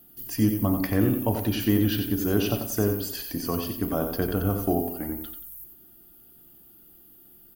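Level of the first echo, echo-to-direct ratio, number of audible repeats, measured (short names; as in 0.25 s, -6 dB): -7.0 dB, -6.5 dB, 3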